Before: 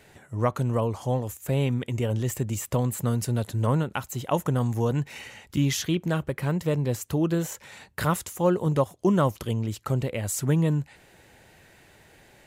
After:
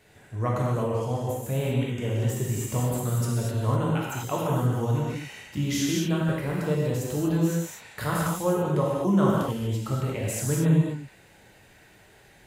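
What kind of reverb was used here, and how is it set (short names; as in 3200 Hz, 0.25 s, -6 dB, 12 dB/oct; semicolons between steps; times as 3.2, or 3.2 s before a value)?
non-linear reverb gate 0.27 s flat, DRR -5 dB; gain -6 dB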